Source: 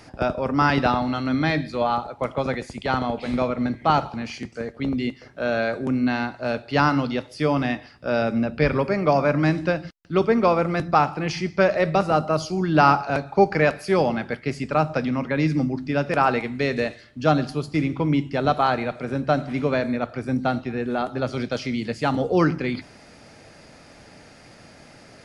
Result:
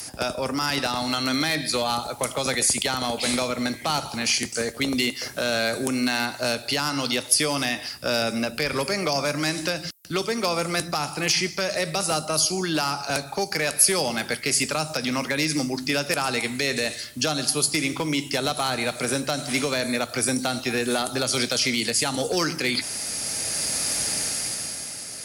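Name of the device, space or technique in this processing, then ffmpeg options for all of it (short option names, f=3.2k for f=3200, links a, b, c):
FM broadcast chain: -filter_complex "[0:a]highpass=43,dynaudnorm=f=110:g=17:m=11.5dB,acrossover=split=310|3500[a][b][c];[a]acompressor=threshold=-33dB:ratio=4[d];[b]acompressor=threshold=-24dB:ratio=4[e];[c]acompressor=threshold=-40dB:ratio=4[f];[d][e][f]amix=inputs=3:normalize=0,aemphasis=mode=production:type=75fm,alimiter=limit=-15.5dB:level=0:latency=1:release=96,asoftclip=type=hard:threshold=-18.5dB,lowpass=f=15k:w=0.5412,lowpass=f=15k:w=1.3066,aemphasis=mode=production:type=75fm,volume=1dB"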